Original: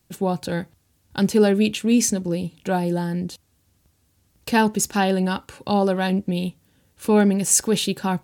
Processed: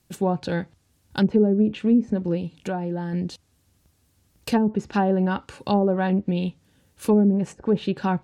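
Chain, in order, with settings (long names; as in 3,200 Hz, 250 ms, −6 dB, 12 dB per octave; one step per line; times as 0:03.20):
treble cut that deepens with the level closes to 390 Hz, closed at −13 dBFS
0:02.37–0:03.13: downward compressor 2 to 1, threshold −28 dBFS, peak gain reduction 6.5 dB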